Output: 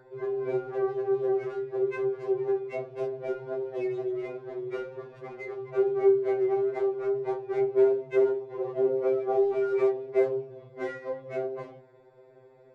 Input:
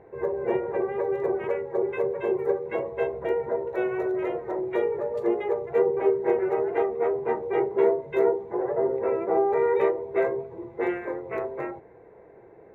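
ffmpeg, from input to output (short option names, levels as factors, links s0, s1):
-af "aeval=exprs='val(0)+0.00708*sin(2*PI*1500*n/s)':c=same,adynamicsmooth=sensitivity=8:basefreq=2600,afftfilt=real='re*2.45*eq(mod(b,6),0)':imag='im*2.45*eq(mod(b,6),0)':win_size=2048:overlap=0.75,volume=0.75"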